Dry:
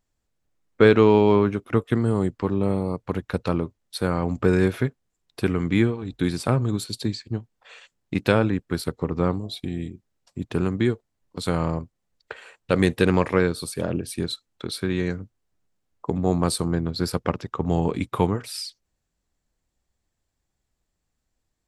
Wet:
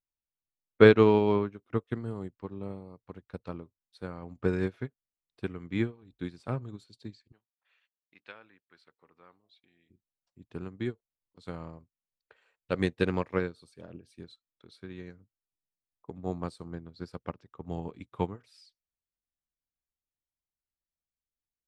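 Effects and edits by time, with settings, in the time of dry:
0:07.32–0:09.90: resonant band-pass 2,100 Hz, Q 0.9
whole clip: low-pass filter 6,300 Hz 12 dB per octave; expander for the loud parts 2.5 to 1, over −27 dBFS

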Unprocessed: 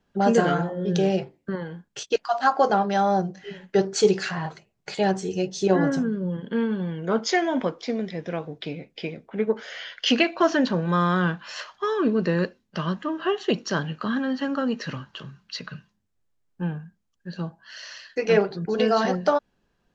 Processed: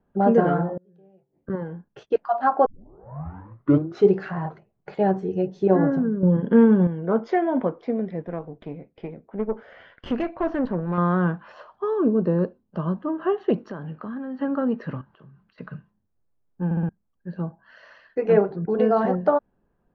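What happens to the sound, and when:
0:00.77–0:01.50: gate with flip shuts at −25 dBFS, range −35 dB
0:02.66: tape start 1.45 s
0:06.23–0:06.87: clip gain +8 dB
0:08.22–0:10.98: tube saturation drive 20 dB, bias 0.7
0:11.52–0:13.08: parametric band 2,000 Hz −10.5 dB 0.83 octaves
0:13.70–0:14.40: downward compressor 3 to 1, threshold −33 dBFS
0:15.01–0:15.58: downward compressor 3 to 1, threshold −50 dBFS
0:16.65: stutter in place 0.06 s, 4 plays
whole clip: low-pass filter 1,100 Hz 12 dB per octave; level +2 dB

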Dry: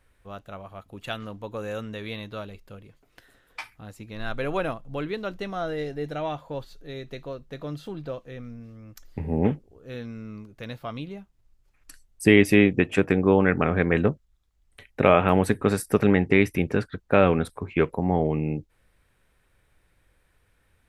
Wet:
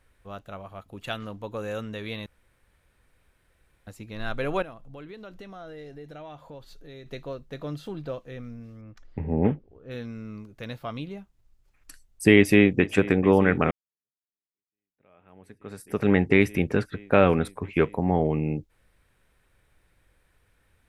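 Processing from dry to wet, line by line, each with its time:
0:02.26–0:03.87: fill with room tone
0:04.62–0:07.06: downward compressor 3 to 1, threshold −43 dBFS
0:08.81–0:09.91: Bessel low-pass filter 2,400 Hz
0:12.36–0:12.83: delay throw 440 ms, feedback 85%, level −17 dB
0:13.71–0:16.13: fade in exponential

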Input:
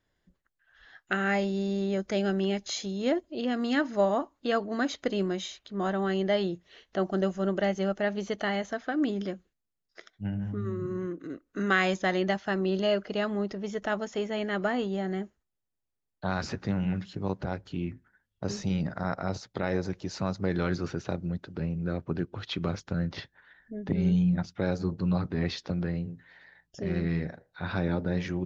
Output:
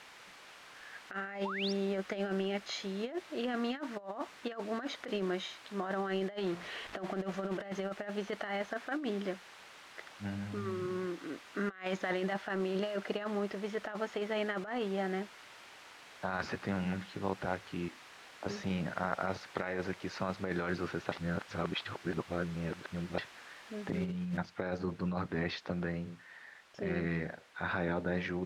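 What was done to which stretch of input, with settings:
0:01.45–0:01.73: sound drawn into the spectrogram rise 820–6,000 Hz −33 dBFS
0:06.38–0:07.84: converter with a step at zero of −38 dBFS
0:11.85–0:13.13: compressor whose output falls as the input rises −29 dBFS, ratio −0.5
0:17.88–0:18.46: Chebyshev high-pass with heavy ripple 220 Hz, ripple 9 dB
0:19.25–0:20.18: parametric band 2,100 Hz +4 dB 1.2 octaves
0:21.12–0:23.18: reverse
0:24.37: noise floor change −47 dB −56 dB
whole clip: low-pass filter 1,800 Hz 12 dB per octave; spectral tilt +3.5 dB per octave; compressor whose output falls as the input rises −34 dBFS, ratio −0.5

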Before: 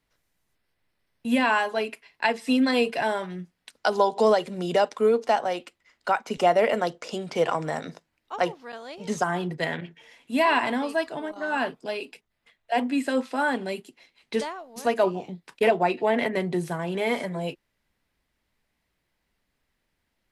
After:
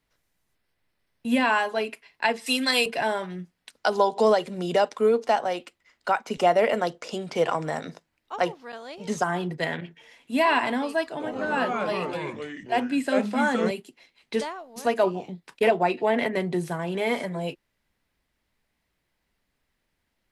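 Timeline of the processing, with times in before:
0:02.46–0:02.86: spectral tilt +4 dB per octave
0:11.10–0:13.71: delay with pitch and tempo change per echo 94 ms, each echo −3 semitones, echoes 3

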